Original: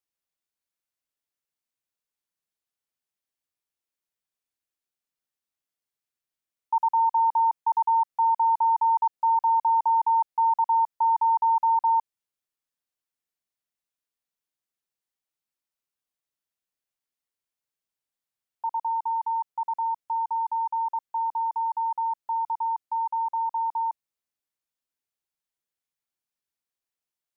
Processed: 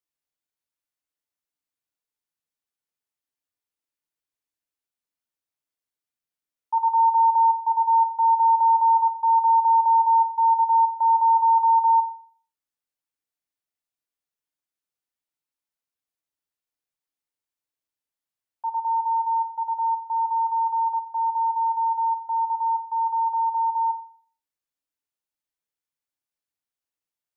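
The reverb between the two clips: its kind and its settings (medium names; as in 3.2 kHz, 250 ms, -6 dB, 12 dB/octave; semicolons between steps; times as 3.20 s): FDN reverb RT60 0.48 s, low-frequency decay 0.95×, high-frequency decay 0.3×, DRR 7 dB; trim -2.5 dB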